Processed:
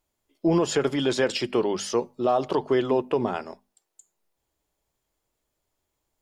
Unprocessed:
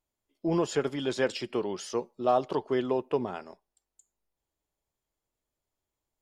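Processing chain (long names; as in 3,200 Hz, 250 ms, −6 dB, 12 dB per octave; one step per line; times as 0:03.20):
brickwall limiter −20.5 dBFS, peak gain reduction 7 dB
mains-hum notches 50/100/150/200/250 Hz
level +8 dB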